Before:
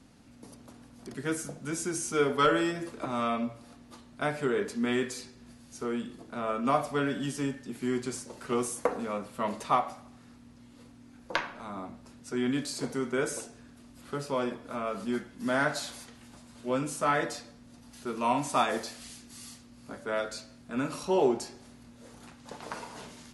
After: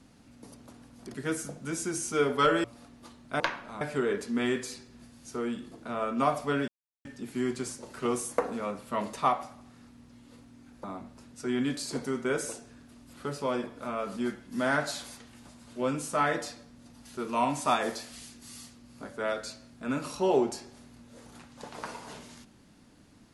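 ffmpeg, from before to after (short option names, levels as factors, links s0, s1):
-filter_complex "[0:a]asplit=7[s0][s1][s2][s3][s4][s5][s6];[s0]atrim=end=2.642[s7];[s1]atrim=start=3.518:end=4.282[s8];[s2]atrim=start=11.308:end=11.722[s9];[s3]atrim=start=4.278:end=7.15,asetpts=PTS-STARTPTS,afade=t=out:st=2.868:d=0.004:c=hsin[s10];[s4]atrim=start=7.15:end=7.52,asetpts=PTS-STARTPTS,volume=0[s11];[s5]atrim=start=7.52:end=11.312,asetpts=PTS-STARTPTS,afade=t=in:d=0.004:c=hsin[s12];[s6]atrim=start=11.718[s13];[s7][s8]acrossfade=d=0.004:c1=hsin:c2=hsin[s14];[s14][s9]acrossfade=d=0.004:c1=hsin:c2=hsin[s15];[s10][s11][s12]concat=n=3:v=0:a=1[s16];[s15][s16]acrossfade=d=0.004:c1=hsin:c2=hsin[s17];[s17][s13]acrossfade=d=0.004:c1=hsin:c2=hsin"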